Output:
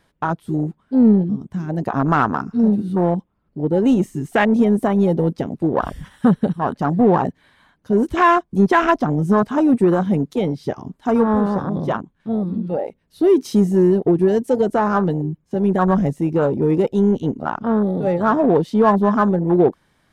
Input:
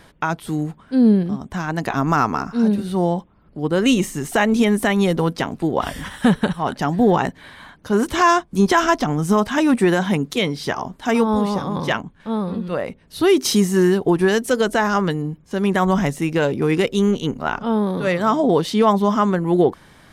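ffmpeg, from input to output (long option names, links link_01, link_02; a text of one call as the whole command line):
ffmpeg -i in.wav -filter_complex "[0:a]afwtdn=0.112,asplit=2[link_01][link_02];[link_02]asoftclip=type=tanh:threshold=-19dB,volume=-8.5dB[link_03];[link_01][link_03]amix=inputs=2:normalize=0" out.wav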